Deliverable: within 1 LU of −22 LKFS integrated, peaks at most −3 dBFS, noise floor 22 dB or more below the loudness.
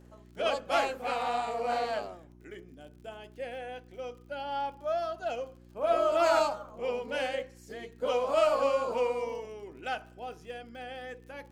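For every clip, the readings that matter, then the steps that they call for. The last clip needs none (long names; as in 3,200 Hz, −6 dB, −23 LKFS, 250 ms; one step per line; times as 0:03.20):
crackle rate 50 per second; mains hum 60 Hz; hum harmonics up to 360 Hz; level of the hum −52 dBFS; integrated loudness −31.0 LKFS; sample peak −13.0 dBFS; target loudness −22.0 LKFS
→ click removal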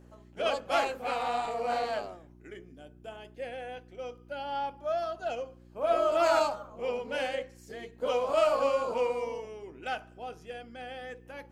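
crackle rate 0.52 per second; mains hum 60 Hz; hum harmonics up to 360 Hz; level of the hum −53 dBFS
→ hum removal 60 Hz, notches 6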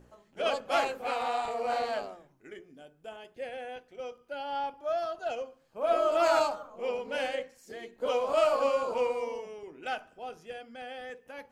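mains hum none found; integrated loudness −31.0 LKFS; sample peak −13.0 dBFS; target loudness −22.0 LKFS
→ level +9 dB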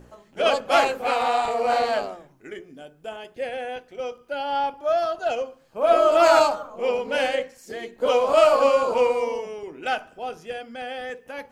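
integrated loudness −22.0 LKFS; sample peak −4.0 dBFS; background noise floor −56 dBFS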